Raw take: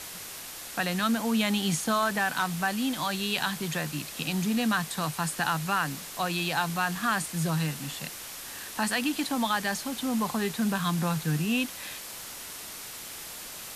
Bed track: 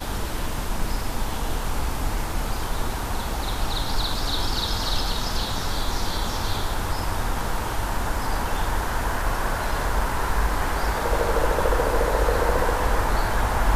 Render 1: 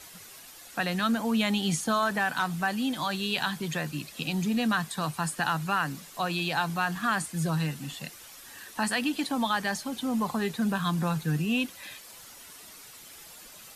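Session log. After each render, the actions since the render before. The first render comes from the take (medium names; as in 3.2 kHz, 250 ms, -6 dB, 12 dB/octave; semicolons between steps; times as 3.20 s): noise reduction 10 dB, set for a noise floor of -41 dBFS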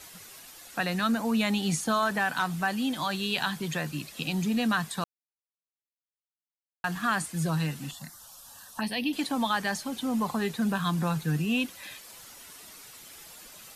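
0.81–1.82 s: band-stop 3.2 kHz; 5.04–6.84 s: mute; 7.91–9.13 s: touch-sensitive phaser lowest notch 290 Hz, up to 1.4 kHz, full sweep at -25.5 dBFS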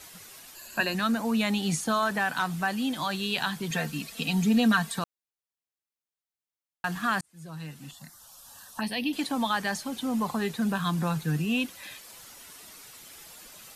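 0.55–0.95 s: rippled EQ curve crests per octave 1.4, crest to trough 13 dB; 3.70–4.99 s: comb 4.4 ms, depth 83%; 7.21–8.57 s: fade in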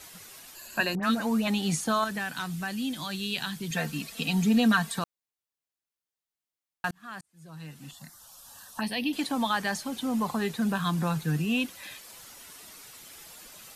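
0.95–1.48 s: phase dispersion highs, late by 80 ms, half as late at 1.6 kHz; 2.04–3.77 s: peaking EQ 850 Hz -9.5 dB 2.2 oct; 6.91–7.97 s: fade in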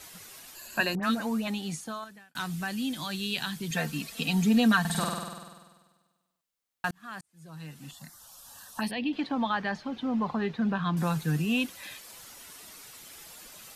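0.87–2.35 s: fade out; 4.80–6.89 s: flutter echo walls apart 8.4 m, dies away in 1.4 s; 8.91–10.97 s: distance through air 250 m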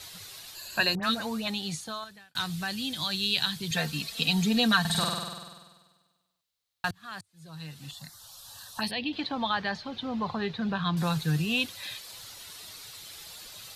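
fifteen-band graphic EQ 100 Hz +10 dB, 250 Hz -6 dB, 4 kHz +10 dB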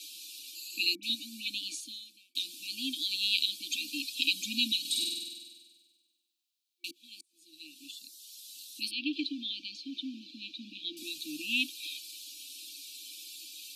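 elliptic high-pass 270 Hz, stop band 40 dB; FFT band-reject 350–2300 Hz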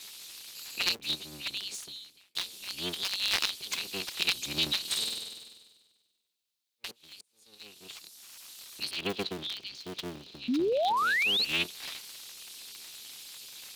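cycle switcher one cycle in 3, inverted; 10.48–11.45 s: painted sound rise 230–4600 Hz -27 dBFS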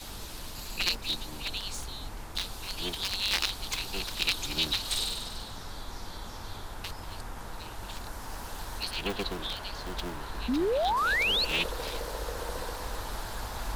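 add bed track -15 dB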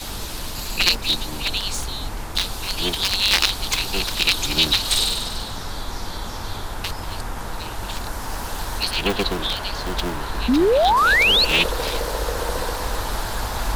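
trim +11 dB; peak limiter -3 dBFS, peak gain reduction 2.5 dB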